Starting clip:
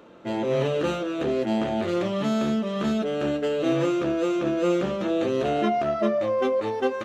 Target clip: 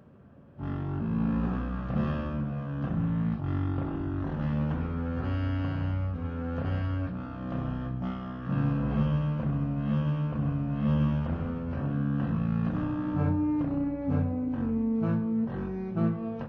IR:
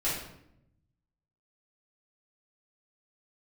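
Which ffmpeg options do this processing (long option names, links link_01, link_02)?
-filter_complex "[0:a]bandreject=frequency=146.3:width_type=h:width=4,bandreject=frequency=292.6:width_type=h:width=4,bandreject=frequency=438.9:width_type=h:width=4,bandreject=frequency=585.2:width_type=h:width=4,bandreject=frequency=731.5:width_type=h:width=4,bandreject=frequency=877.8:width_type=h:width=4,bandreject=frequency=1024.1:width_type=h:width=4,bandreject=frequency=1170.4:width_type=h:width=4,bandreject=frequency=1316.7:width_type=h:width=4,asplit=2[link_01][link_02];[1:a]atrim=start_sample=2205[link_03];[link_02][link_03]afir=irnorm=-1:irlink=0,volume=-17dB[link_04];[link_01][link_04]amix=inputs=2:normalize=0,asetrate=18846,aresample=44100,volume=-5dB"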